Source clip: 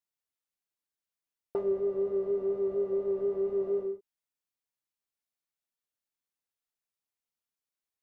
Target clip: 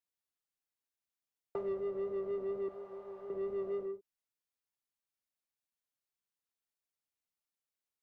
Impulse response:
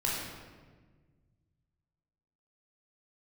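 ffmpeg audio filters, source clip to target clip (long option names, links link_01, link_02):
-filter_complex "[0:a]asettb=1/sr,asplit=3[link_01][link_02][link_03];[link_01]atrim=end=2.684[link_04];[link_02]atrim=start=2.68:end=3.3,asetpts=PTS-STARTPTS,afade=type=in:duration=0.004:curve=qsin,afade=type=out:start_time=0.616:duration=0.004:curve=qsin,lowshelf=frequency=590:width_type=q:width=1.5:gain=-11[link_05];[link_03]atrim=start=3.296[link_06];[link_04][link_05]acrossfade=duration=0.004:curve1=hsin:curve2=qsin[link_07];[link_07][link_06]acrossfade=duration=0.004:curve1=qsin:curve2=hsin,acrossover=split=170|220|470[link_08][link_09][link_10][link_11];[link_10]asoftclip=type=tanh:threshold=-39.5dB[link_12];[link_08][link_09][link_12][link_11]amix=inputs=4:normalize=0,volume=-3.5dB"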